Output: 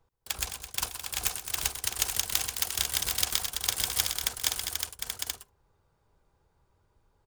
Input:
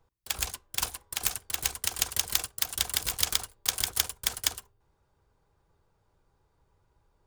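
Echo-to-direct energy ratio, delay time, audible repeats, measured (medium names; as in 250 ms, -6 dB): -2.0 dB, 129 ms, 4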